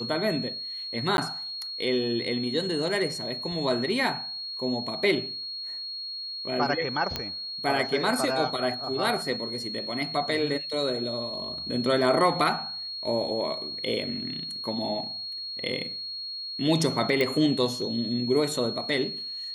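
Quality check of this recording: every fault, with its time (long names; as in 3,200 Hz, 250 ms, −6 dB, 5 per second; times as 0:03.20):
whistle 4,300 Hz −33 dBFS
0:01.17–0:01.18: drop-out
0:07.16: click −13 dBFS
0:17.21: click −13 dBFS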